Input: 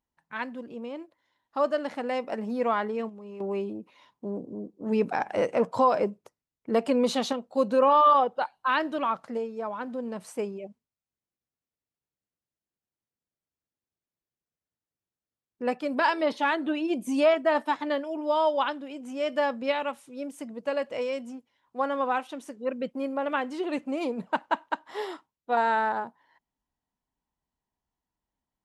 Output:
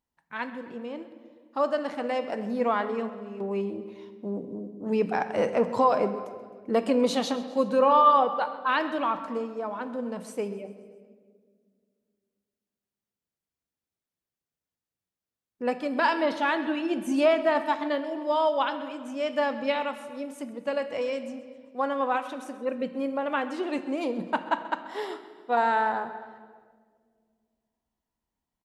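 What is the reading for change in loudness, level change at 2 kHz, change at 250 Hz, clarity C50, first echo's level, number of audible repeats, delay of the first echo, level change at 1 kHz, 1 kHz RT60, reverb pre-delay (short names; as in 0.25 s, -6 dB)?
+0.5 dB, +0.5 dB, +1.0 dB, 11.0 dB, -18.0 dB, 4, 0.131 s, +0.5 dB, 1.4 s, 4 ms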